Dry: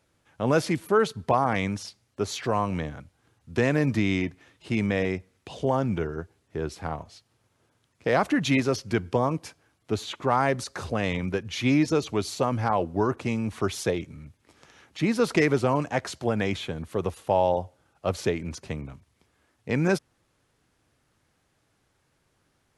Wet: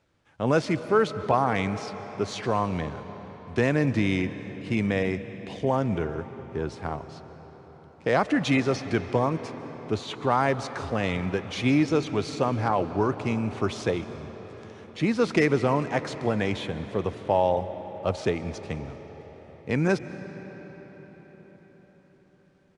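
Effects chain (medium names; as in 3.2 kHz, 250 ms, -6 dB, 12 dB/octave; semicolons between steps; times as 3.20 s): median filter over 5 samples; on a send at -11.5 dB: reverberation RT60 5.5 s, pre-delay 105 ms; on the sum: resampled via 22.05 kHz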